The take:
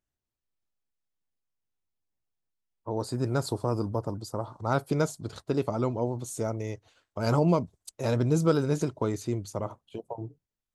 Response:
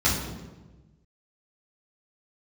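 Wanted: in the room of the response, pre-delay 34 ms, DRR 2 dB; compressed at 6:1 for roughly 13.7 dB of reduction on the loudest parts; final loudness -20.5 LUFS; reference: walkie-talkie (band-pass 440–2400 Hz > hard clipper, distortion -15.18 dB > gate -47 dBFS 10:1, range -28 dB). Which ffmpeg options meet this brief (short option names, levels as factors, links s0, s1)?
-filter_complex "[0:a]acompressor=threshold=0.02:ratio=6,asplit=2[s0][s1];[1:a]atrim=start_sample=2205,adelay=34[s2];[s1][s2]afir=irnorm=-1:irlink=0,volume=0.15[s3];[s0][s3]amix=inputs=2:normalize=0,highpass=440,lowpass=2400,asoftclip=type=hard:threshold=0.0188,agate=range=0.0398:threshold=0.00447:ratio=10,volume=13.3"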